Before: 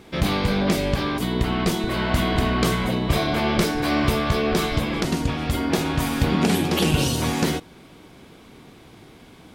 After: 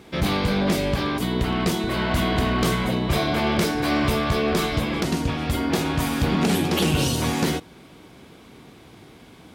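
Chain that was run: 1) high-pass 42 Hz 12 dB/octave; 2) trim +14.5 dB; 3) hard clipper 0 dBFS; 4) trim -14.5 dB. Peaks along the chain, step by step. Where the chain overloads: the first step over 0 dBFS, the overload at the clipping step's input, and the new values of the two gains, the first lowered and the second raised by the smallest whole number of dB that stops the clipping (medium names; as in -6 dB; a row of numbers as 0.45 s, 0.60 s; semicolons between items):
-7.5 dBFS, +7.0 dBFS, 0.0 dBFS, -14.5 dBFS; step 2, 7.0 dB; step 2 +7.5 dB, step 4 -7.5 dB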